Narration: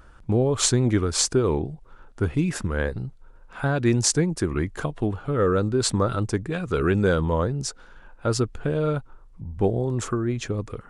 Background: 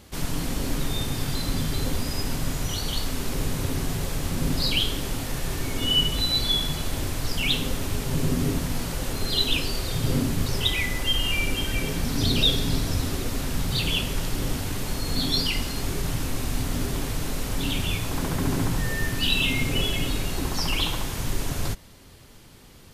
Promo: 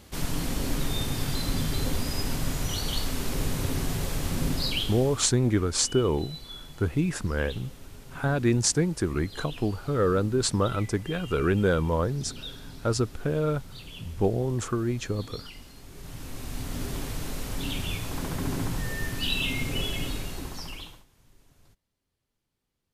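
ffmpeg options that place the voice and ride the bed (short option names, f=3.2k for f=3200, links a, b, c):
-filter_complex "[0:a]adelay=4600,volume=-2.5dB[a];[1:a]volume=12.5dB,afade=t=out:st=4.37:d=1:silence=0.133352,afade=t=in:st=15.89:d=1.03:silence=0.199526,afade=t=out:st=20.05:d=1:silence=0.0421697[b];[a][b]amix=inputs=2:normalize=0"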